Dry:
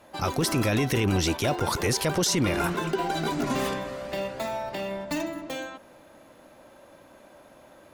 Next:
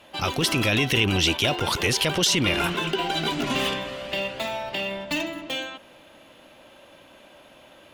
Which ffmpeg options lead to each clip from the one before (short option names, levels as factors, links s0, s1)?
-af "equalizer=f=3000:t=o:w=0.79:g=14"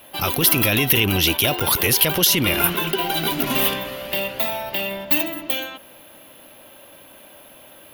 -af "aexciter=amount=10.5:drive=8.1:freq=11000,volume=1.33"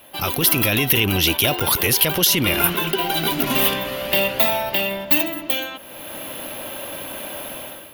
-af "dynaudnorm=f=120:g=7:m=5.62,volume=0.891"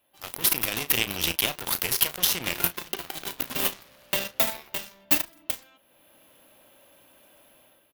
-filter_complex "[0:a]aeval=exprs='0.841*(cos(1*acos(clip(val(0)/0.841,-1,1)))-cos(1*PI/2))+0.133*(cos(7*acos(clip(val(0)/0.841,-1,1)))-cos(7*PI/2))':c=same,asplit=2[s0][s1];[s1]adelay=35,volume=0.211[s2];[s0][s2]amix=inputs=2:normalize=0,volume=0.631"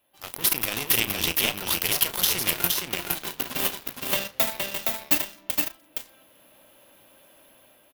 -af "aecho=1:1:467:0.668"